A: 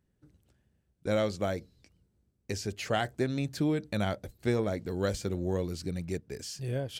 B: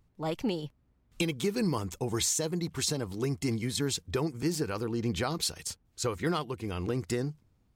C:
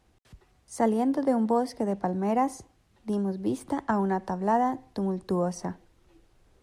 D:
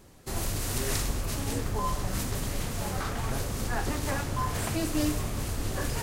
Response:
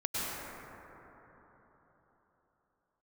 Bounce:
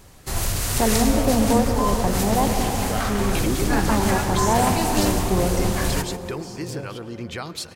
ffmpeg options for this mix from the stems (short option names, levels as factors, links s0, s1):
-filter_complex "[0:a]volume=0.631,asplit=2[s0][s1];[s1]volume=0.251[s2];[1:a]equalizer=f=2000:t=o:w=1.6:g=5.5,adelay=2150,volume=0.708,asplit=2[s3][s4];[s4]volume=0.0841[s5];[2:a]volume=0.944,asplit=2[s6][s7];[s7]volume=0.447[s8];[3:a]acontrast=51,equalizer=f=300:w=0.74:g=-6.5,volume=1.26,asplit=2[s9][s10];[s10]volume=0.251[s11];[4:a]atrim=start_sample=2205[s12];[s2][s5][s8]amix=inputs=3:normalize=0[s13];[s13][s12]afir=irnorm=-1:irlink=0[s14];[s11]aecho=0:1:143|286|429|572|715|858:1|0.41|0.168|0.0689|0.0283|0.0116[s15];[s0][s3][s6][s9][s14][s15]amix=inputs=6:normalize=0"